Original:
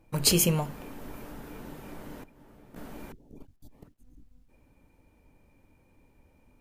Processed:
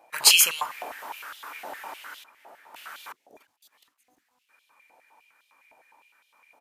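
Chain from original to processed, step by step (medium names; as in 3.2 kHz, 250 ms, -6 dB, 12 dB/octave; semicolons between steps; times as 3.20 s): resampled via 32 kHz; step-sequenced high-pass 9.8 Hz 720–3400 Hz; trim +6.5 dB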